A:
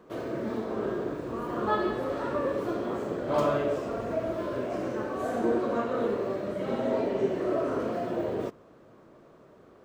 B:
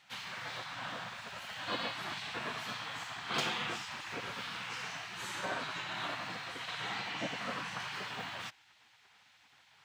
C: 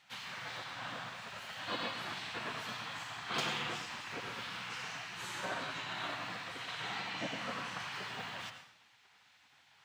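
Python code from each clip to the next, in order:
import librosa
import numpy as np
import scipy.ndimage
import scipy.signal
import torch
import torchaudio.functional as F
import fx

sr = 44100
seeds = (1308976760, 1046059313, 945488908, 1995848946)

y1 = fx.weighting(x, sr, curve='D')
y1 = fx.spec_gate(y1, sr, threshold_db=-15, keep='weak')
y1 = scipy.signal.sosfilt(scipy.signal.butter(2, 110.0, 'highpass', fs=sr, output='sos'), y1)
y2 = fx.rev_plate(y1, sr, seeds[0], rt60_s=0.69, hf_ratio=0.9, predelay_ms=80, drr_db=7.5)
y2 = y2 * 10.0 ** (-2.0 / 20.0)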